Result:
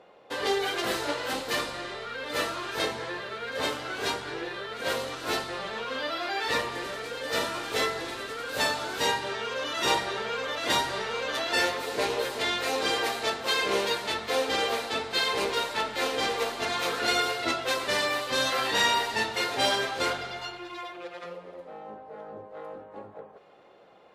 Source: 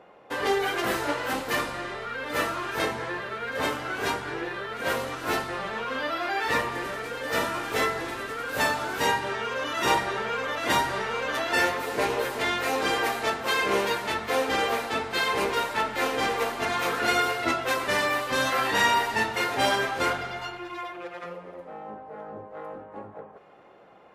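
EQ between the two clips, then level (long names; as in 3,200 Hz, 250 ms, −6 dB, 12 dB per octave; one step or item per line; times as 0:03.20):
octave-band graphic EQ 500/4,000/8,000 Hz +4/+9/+4 dB
−5.0 dB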